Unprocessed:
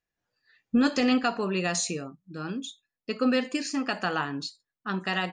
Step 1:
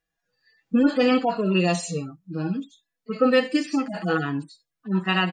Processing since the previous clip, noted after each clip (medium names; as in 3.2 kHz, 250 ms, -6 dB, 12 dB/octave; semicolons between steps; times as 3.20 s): harmonic-percussive separation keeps harmonic; comb 6.1 ms, depth 46%; trim +6.5 dB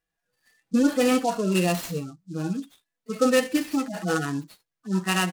delay time shaken by noise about 5.6 kHz, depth 0.035 ms; trim -1.5 dB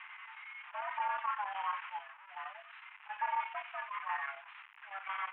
one-bit delta coder 16 kbps, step -37 dBFS; mistuned SSB +400 Hz 510–2400 Hz; square tremolo 11 Hz, depth 60%, duty 85%; trim -3.5 dB